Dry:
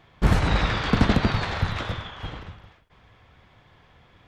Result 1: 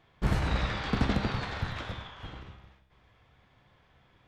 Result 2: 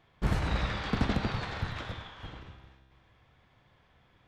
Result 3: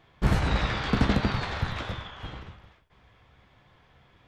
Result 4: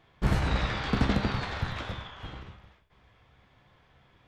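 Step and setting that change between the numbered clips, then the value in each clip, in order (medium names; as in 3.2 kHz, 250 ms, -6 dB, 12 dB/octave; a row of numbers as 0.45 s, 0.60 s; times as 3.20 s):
feedback comb, decay: 0.91 s, 2 s, 0.18 s, 0.42 s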